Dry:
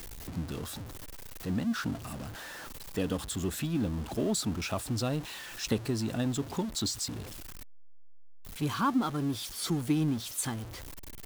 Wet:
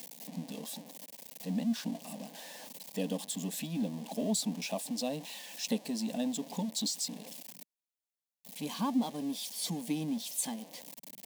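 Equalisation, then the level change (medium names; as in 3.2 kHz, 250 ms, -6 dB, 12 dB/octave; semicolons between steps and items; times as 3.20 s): brick-wall FIR high-pass 160 Hz; static phaser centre 360 Hz, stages 6; 0.0 dB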